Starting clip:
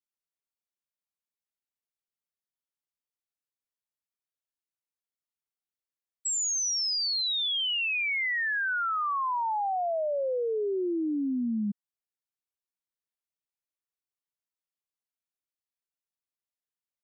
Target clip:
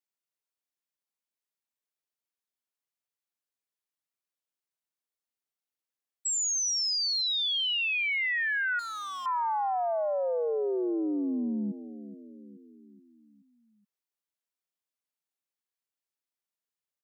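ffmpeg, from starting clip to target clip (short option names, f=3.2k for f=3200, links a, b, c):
-filter_complex "[0:a]highpass=190,asplit=2[a][b];[b]adelay=426,lowpass=f=1.7k:p=1,volume=-13.5dB,asplit=2[c][d];[d]adelay=426,lowpass=f=1.7k:p=1,volume=0.52,asplit=2[e][f];[f]adelay=426,lowpass=f=1.7k:p=1,volume=0.52,asplit=2[g][h];[h]adelay=426,lowpass=f=1.7k:p=1,volume=0.52,asplit=2[i][j];[j]adelay=426,lowpass=f=1.7k:p=1,volume=0.52[k];[c][e][g][i][k]amix=inputs=5:normalize=0[l];[a][l]amix=inputs=2:normalize=0,asettb=1/sr,asplit=3[m][n][o];[m]atrim=end=8.794[p];[n]atrim=start=8.79:end=9.26,asetpts=PTS-STARTPTS,afade=t=in:d=0.004:c=qsin,afade=t=out:st=0.466:d=0.004:c=qsin,asoftclip=type=hard:threshold=-36.5dB[q];[o]atrim=start=9.256[r];[p][q]acrossfade=d=0.004:c1=hsin:c2=qsin[s];[s][r]acrossfade=d=0.004:c1=qsin:c2=hsin"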